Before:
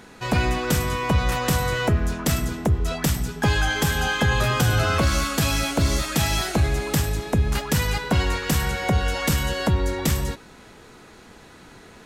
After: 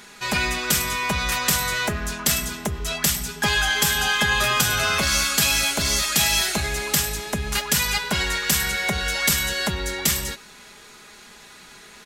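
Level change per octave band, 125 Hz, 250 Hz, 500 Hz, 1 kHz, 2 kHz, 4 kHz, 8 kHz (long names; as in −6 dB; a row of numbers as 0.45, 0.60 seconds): −9.0, −5.5, −4.0, −0.5, +4.0, +6.5, +8.0 decibels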